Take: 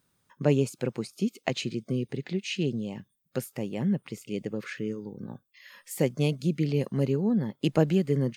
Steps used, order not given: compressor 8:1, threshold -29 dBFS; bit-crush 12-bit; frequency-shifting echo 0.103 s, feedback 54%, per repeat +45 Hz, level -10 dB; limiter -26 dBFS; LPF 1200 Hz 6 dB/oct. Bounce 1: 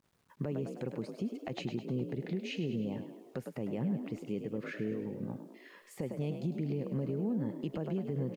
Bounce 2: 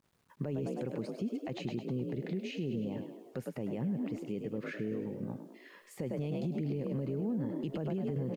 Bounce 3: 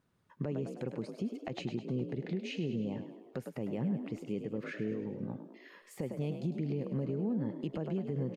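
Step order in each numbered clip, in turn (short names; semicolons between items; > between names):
LPF > compressor > frequency-shifting echo > limiter > bit-crush; frequency-shifting echo > limiter > compressor > LPF > bit-crush; compressor > frequency-shifting echo > bit-crush > LPF > limiter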